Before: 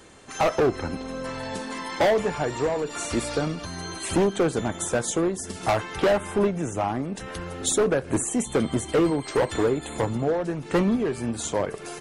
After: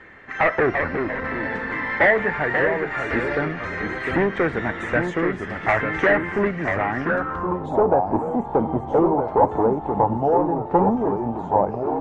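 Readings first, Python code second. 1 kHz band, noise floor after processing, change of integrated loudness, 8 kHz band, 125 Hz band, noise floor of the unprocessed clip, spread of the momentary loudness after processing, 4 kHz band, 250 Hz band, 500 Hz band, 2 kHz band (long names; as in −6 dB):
+8.0 dB, −33 dBFS, +4.0 dB, below −25 dB, +1.5 dB, −39 dBFS, 7 LU, −7.5 dB, +2.0 dB, +3.0 dB, +11.0 dB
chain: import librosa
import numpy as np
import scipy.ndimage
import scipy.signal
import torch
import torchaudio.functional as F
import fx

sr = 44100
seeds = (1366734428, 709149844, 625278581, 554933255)

y = fx.echo_pitch(x, sr, ms=291, semitones=-2, count=3, db_per_echo=-6.0)
y = fx.filter_sweep_lowpass(y, sr, from_hz=1900.0, to_hz=850.0, start_s=6.92, end_s=7.73, q=6.3)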